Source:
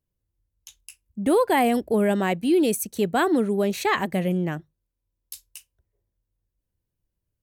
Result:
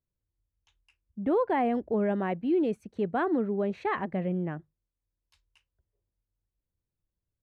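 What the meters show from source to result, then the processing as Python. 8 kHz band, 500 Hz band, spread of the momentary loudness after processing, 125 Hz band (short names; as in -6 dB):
under -30 dB, -6.0 dB, 7 LU, -6.0 dB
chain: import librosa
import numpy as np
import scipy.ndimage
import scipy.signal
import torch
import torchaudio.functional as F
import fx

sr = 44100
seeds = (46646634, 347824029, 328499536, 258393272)

y = scipy.signal.sosfilt(scipy.signal.butter(2, 1700.0, 'lowpass', fs=sr, output='sos'), x)
y = y * librosa.db_to_amplitude(-6.0)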